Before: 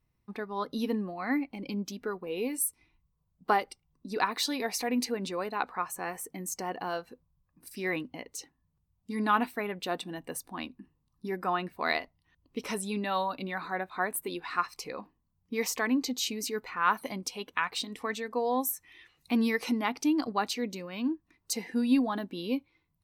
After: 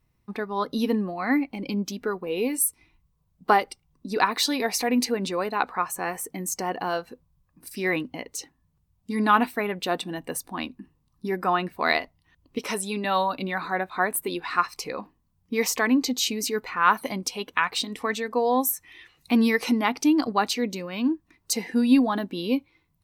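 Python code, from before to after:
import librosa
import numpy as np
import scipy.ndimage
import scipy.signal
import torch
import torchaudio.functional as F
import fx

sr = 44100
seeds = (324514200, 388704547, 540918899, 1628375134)

y = fx.low_shelf(x, sr, hz=180.0, db=-10.5, at=(12.58, 13.05))
y = F.gain(torch.from_numpy(y), 6.5).numpy()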